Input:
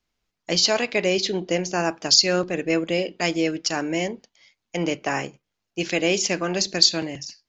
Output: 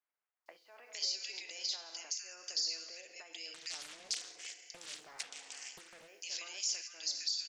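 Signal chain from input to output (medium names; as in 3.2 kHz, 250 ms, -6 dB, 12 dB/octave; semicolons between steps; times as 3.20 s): level rider gain up to 8 dB; FDN reverb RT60 1.2 s, low-frequency decay 0.9×, high-frequency decay 0.65×, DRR 9.5 dB; peak limiter -15.5 dBFS, peak gain reduction 14.5 dB; peaking EQ 4.9 kHz +6 dB 0.37 oct; compression 6:1, threshold -37 dBFS, peak gain reduction 18.5 dB; high-pass 430 Hz 12 dB/octave; differentiator; bands offset in time lows, highs 460 ms, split 1.7 kHz; 3.54–6.08 s: loudspeaker Doppler distortion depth 0.6 ms; trim +6.5 dB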